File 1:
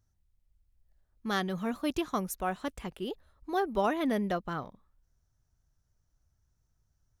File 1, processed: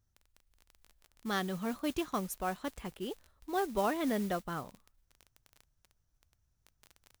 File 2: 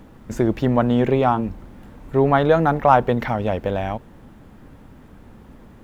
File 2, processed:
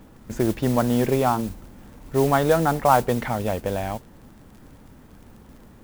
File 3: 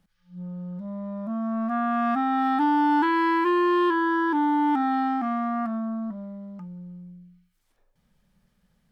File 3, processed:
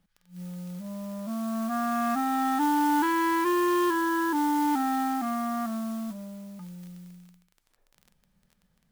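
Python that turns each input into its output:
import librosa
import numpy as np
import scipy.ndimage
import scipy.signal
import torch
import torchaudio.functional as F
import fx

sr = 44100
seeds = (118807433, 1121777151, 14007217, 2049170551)

y = fx.dmg_crackle(x, sr, seeds[0], per_s=20.0, level_db=-37.0)
y = fx.mod_noise(y, sr, seeds[1], snr_db=18)
y = y * librosa.db_to_amplitude(-3.0)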